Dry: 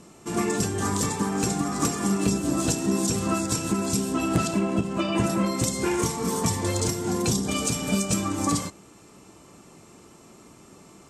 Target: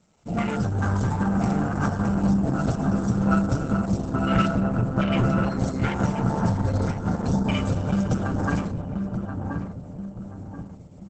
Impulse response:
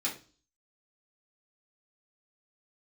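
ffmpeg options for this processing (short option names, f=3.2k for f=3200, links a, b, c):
-filter_complex "[0:a]asplit=3[a][b][c];[a]afade=t=out:st=6.32:d=0.02[d];[b]bandreject=f=7.2k:w=19,afade=t=in:st=6.32:d=0.02,afade=t=out:st=7.1:d=0.02[e];[c]afade=t=in:st=7.1:d=0.02[f];[d][e][f]amix=inputs=3:normalize=0,acrossover=split=7200[g][h];[h]acompressor=threshold=-47dB:ratio=4:attack=1:release=60[i];[g][i]amix=inputs=2:normalize=0,afwtdn=0.0282,asettb=1/sr,asplit=3[j][k][l];[j]atrim=end=4.594[m];[k]atrim=start=4.59:end=5.61,asetpts=PTS-STARTPTS,afade=t=in:d=0.004:c=qsin,afade=t=out:st=1.016:d=0.004:c=qsin,equalizer=f=120:w=2.5:g=11.5[n];[l]atrim=start=5.606[o];[m][n]acrossfade=d=0.004:c1=hsin:c2=qsin[p];[p][o]acrossfade=d=0.004:c1=qsin:c2=hsin,aecho=1:1:1.4:0.84,asettb=1/sr,asplit=3[q][r][s];[q]atrim=end=0.744[t];[r]atrim=start=0.74:end=1.42,asetpts=PTS-STARTPTS,afade=t=in:d=0.004:c=qsin,afade=t=out:st=0.676:d=0.004:c=qsin,asubboost=boost=9.5:cutoff=210[u];[s]atrim=start=1.416[v];[t][u]acrossfade=d=0.004:c1=hsin:c2=qsin[w];[w][v]acrossfade=d=0.004:c1=qsin:c2=hsin,acrossover=split=490|910[x][y][z];[x]asoftclip=type=tanh:threshold=-22.5dB[aa];[y]acompressor=threshold=-43dB:ratio=12[ab];[z]aeval=exprs='0.126*(cos(1*acos(clip(val(0)/0.126,-1,1)))-cos(1*PI/2))+0.00251*(cos(5*acos(clip(val(0)/0.126,-1,1)))-cos(5*PI/2))+0.00398*(cos(7*acos(clip(val(0)/0.126,-1,1)))-cos(7*PI/2))+0.00398*(cos(8*acos(clip(val(0)/0.126,-1,1)))-cos(8*PI/2))':c=same[ac];[aa][ab][ac]amix=inputs=3:normalize=0,tremolo=f=140:d=0.4,asplit=2[ad][ae];[ae]adelay=1031,lowpass=f=950:p=1,volume=-3.5dB,asplit=2[af][ag];[ag]adelay=1031,lowpass=f=950:p=1,volume=0.43,asplit=2[ah][ai];[ai]adelay=1031,lowpass=f=950:p=1,volume=0.43,asplit=2[aj][ak];[ak]adelay=1031,lowpass=f=950:p=1,volume=0.43,asplit=2[al][am];[am]adelay=1031,lowpass=f=950:p=1,volume=0.43[an];[ad][af][ah][aj][al][an]amix=inputs=6:normalize=0,volume=6dB" -ar 48000 -c:a libopus -b:a 10k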